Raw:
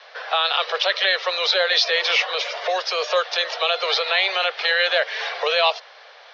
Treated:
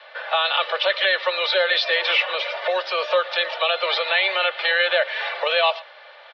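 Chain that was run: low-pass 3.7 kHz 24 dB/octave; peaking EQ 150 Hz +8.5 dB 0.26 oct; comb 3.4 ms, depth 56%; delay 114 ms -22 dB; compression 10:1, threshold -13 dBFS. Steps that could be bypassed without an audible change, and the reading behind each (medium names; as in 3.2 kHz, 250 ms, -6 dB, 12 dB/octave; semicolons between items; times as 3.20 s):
peaking EQ 150 Hz: input has nothing below 340 Hz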